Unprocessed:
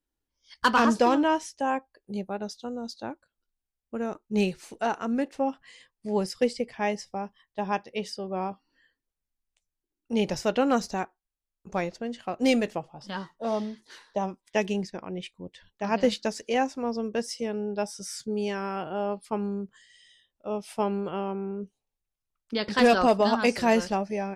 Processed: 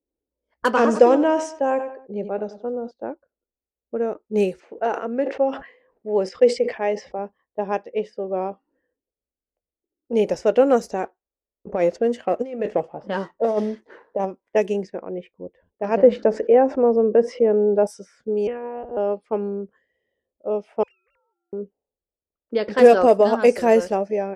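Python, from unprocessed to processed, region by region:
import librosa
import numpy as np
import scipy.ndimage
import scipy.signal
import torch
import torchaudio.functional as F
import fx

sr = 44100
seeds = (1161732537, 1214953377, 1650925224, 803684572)

y = fx.chain(x, sr, fx.lowpass(hz=8300.0, slope=24),
    fx.echo_feedback(ms=93, feedback_pct=36, wet_db=-16.5),
    fx.sustainer(db_per_s=94.0), at=(0.72, 2.91))
y = fx.chain(y, sr, fx.lowpass(hz=4700.0, slope=12),
    fx.low_shelf(hz=180.0, db=-10.5),
    fx.sustainer(db_per_s=83.0), at=(4.6, 7.19))
y = fx.chain(y, sr, fx.over_compress(threshold_db=-29.0, ratio=-0.5),
    fx.leveller(passes=1), at=(11.03, 14.25))
y = fx.chain(y, sr, fx.lowpass(hz=1400.0, slope=12),
    fx.env_flatten(amount_pct=50), at=(15.97, 17.87))
y = fx.chain(y, sr, fx.fixed_phaser(hz=880.0, stages=8),
    fx.lpc_monotone(seeds[0], pitch_hz=240.0, order=10), at=(18.47, 18.97))
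y = fx.chain(y, sr, fx.sine_speech(),
    fx.cheby1_highpass(hz=2600.0, order=3),
    fx.tube_stage(drive_db=50.0, bias=0.3), at=(20.83, 21.53))
y = scipy.signal.sosfilt(scipy.signal.butter(2, 54.0, 'highpass', fs=sr, output='sos'), y)
y = fx.env_lowpass(y, sr, base_hz=620.0, full_db=-22.5)
y = fx.graphic_eq(y, sr, hz=(125, 500, 1000, 4000), db=(-10, 10, -4, -10))
y = y * 10.0 ** (2.5 / 20.0)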